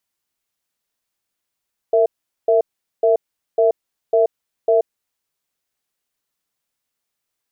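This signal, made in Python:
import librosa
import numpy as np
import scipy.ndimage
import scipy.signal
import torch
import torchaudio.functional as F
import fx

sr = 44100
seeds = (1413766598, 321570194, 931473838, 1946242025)

y = fx.cadence(sr, length_s=2.92, low_hz=458.0, high_hz=662.0, on_s=0.13, off_s=0.42, level_db=-14.0)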